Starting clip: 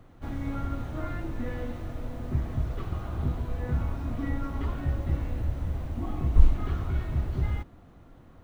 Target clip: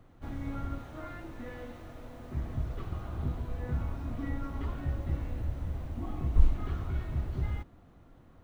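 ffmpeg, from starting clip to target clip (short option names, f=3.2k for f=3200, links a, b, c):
-filter_complex "[0:a]asettb=1/sr,asplit=3[a][b][c];[a]atrim=end=0.784[d];[b]atrim=start=0.78:end=2.37,asetpts=PTS-STARTPTS,afade=t=in:d=0.004:c=qsin,afade=t=out:st=1.586:d=0.004:c=qsin,lowshelf=f=260:g=-8.5[e];[c]atrim=start=2.366[f];[d][e]acrossfade=d=0.004:c1=hsin:c2=qsin[g];[g][f]acrossfade=d=0.004:c1=qsin:c2=hsin,volume=-4.5dB"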